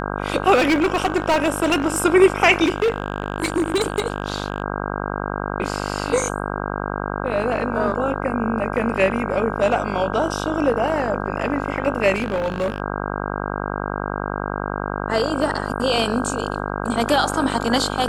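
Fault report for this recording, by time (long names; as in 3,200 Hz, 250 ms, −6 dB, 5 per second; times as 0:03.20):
mains buzz 50 Hz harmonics 32 −26 dBFS
0:00.54–0:02.02: clipping −13.5 dBFS
0:02.64–0:04.62: clipping −14.5 dBFS
0:12.14–0:12.80: clipping −17.5 dBFS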